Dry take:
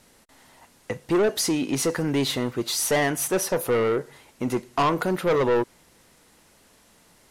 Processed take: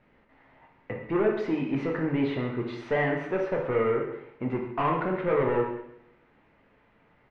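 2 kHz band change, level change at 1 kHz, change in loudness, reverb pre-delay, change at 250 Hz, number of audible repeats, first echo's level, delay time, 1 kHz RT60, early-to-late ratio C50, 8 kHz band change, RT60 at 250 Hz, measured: -3.5 dB, -3.5 dB, -4.0 dB, 5 ms, -3.0 dB, 1, -14.0 dB, 135 ms, 0.75 s, 4.5 dB, under -35 dB, 0.75 s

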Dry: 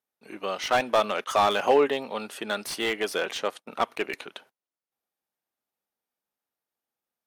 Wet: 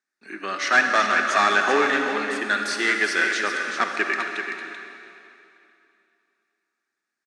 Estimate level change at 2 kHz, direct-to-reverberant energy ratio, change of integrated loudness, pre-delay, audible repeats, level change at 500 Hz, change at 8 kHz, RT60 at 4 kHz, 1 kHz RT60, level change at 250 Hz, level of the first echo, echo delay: +13.0 dB, 2.0 dB, +5.0 dB, 39 ms, 1, -1.5 dB, +5.5 dB, 2.6 s, 2.7 s, +4.0 dB, -7.5 dB, 384 ms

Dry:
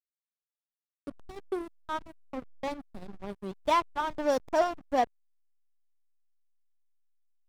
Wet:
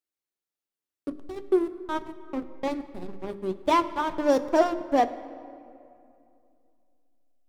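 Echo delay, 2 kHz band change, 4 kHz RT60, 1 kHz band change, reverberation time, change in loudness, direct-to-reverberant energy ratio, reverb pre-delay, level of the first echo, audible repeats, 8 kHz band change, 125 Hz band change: no echo, +2.5 dB, 1.4 s, +3.0 dB, 2.6 s, +4.5 dB, 10.5 dB, 11 ms, no echo, no echo, +2.0 dB, +3.5 dB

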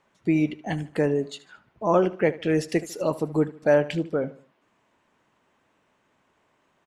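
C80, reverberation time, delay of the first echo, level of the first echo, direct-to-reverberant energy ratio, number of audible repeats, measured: no reverb, no reverb, 75 ms, -18.0 dB, no reverb, 3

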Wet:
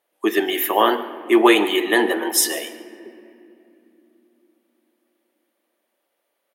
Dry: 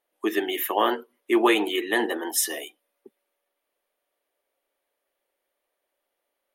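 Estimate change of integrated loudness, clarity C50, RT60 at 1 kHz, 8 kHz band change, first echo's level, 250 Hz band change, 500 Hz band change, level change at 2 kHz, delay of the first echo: +6.0 dB, 12.0 dB, 2.5 s, +6.0 dB, -18.5 dB, +6.5 dB, +6.5 dB, +6.0 dB, 145 ms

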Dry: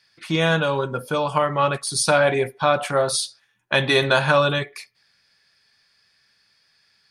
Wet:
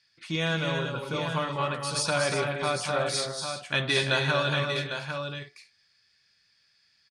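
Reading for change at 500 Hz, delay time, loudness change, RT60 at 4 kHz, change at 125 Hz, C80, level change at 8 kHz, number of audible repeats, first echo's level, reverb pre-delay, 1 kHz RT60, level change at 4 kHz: -9.0 dB, 156 ms, -7.5 dB, no reverb, -4.5 dB, no reverb, -6.5 dB, 5, -18.5 dB, no reverb, no reverb, -3.5 dB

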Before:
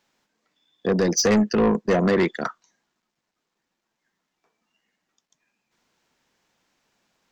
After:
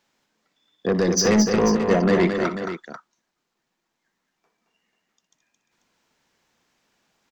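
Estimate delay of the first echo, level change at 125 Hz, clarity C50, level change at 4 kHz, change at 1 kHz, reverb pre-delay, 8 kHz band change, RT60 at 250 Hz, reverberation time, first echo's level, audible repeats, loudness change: 61 ms, +1.5 dB, no reverb, +1.5 dB, +1.5 dB, no reverb, +1.5 dB, no reverb, no reverb, -13.0 dB, 4, +1.0 dB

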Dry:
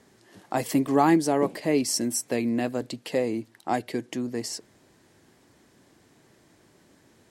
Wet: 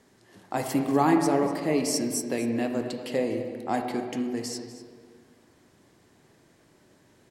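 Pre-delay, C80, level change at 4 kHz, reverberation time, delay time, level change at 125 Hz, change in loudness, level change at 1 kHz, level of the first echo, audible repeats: 12 ms, 6.5 dB, -2.0 dB, 2.0 s, 244 ms, -0.5 dB, -1.0 dB, -1.0 dB, -14.5 dB, 1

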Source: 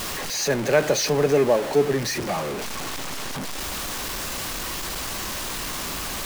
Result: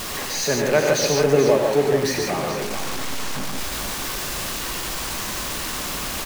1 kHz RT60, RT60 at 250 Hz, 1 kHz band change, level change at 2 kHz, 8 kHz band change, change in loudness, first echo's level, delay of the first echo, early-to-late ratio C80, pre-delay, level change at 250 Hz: no reverb, no reverb, +2.0 dB, +2.5 dB, +2.5 dB, +2.5 dB, -8.0 dB, 94 ms, no reverb, no reverb, +2.0 dB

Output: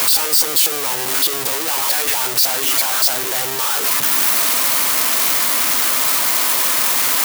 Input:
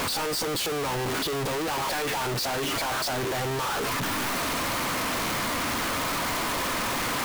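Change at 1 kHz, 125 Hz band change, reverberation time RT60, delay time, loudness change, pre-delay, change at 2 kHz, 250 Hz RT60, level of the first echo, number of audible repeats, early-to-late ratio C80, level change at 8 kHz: +4.0 dB, -7.0 dB, no reverb, no echo, +13.0 dB, no reverb, +6.5 dB, no reverb, no echo, no echo, no reverb, +16.0 dB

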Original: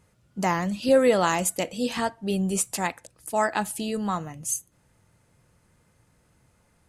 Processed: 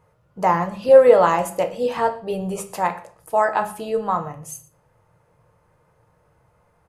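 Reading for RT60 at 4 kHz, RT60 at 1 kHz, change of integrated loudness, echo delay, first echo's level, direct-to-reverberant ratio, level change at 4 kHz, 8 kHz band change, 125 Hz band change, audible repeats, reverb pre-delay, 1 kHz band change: 0.40 s, 0.50 s, +6.5 dB, 117 ms, -22.5 dB, 6.5 dB, -5.0 dB, -8.5 dB, 0.0 dB, 1, 6 ms, +7.5 dB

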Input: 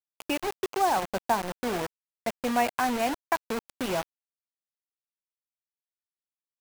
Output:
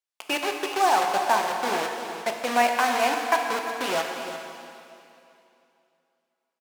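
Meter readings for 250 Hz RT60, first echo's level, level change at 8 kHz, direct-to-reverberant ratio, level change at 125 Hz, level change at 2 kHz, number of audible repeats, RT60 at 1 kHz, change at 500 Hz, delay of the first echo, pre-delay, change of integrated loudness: 2.7 s, -12.5 dB, +5.0 dB, 2.0 dB, no reading, +7.0 dB, 1, 2.7 s, +3.5 dB, 350 ms, 4 ms, +4.5 dB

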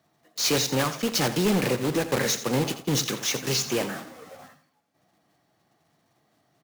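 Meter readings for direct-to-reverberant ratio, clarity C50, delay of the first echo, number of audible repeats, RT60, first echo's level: no reverb, no reverb, 85 ms, 3, no reverb, -13.0 dB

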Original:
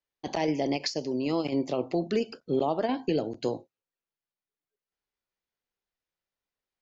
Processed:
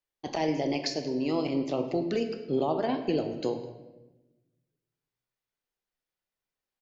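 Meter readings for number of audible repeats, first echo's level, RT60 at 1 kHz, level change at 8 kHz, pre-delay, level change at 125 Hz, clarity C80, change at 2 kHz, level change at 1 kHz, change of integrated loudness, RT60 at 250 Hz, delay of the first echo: 1, -21.5 dB, 0.90 s, no reading, 3 ms, 0.0 dB, 10.5 dB, -0.5 dB, -0.5 dB, -0.5 dB, 1.4 s, 208 ms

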